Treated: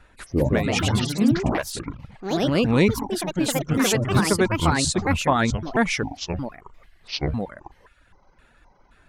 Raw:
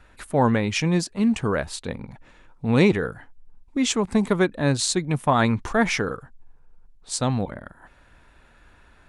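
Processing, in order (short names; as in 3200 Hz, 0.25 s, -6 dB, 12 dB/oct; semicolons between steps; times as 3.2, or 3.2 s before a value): trilling pitch shifter -9.5 st, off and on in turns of 0.262 s; reverb removal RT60 0.77 s; echoes that change speed 0.219 s, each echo +3 st, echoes 3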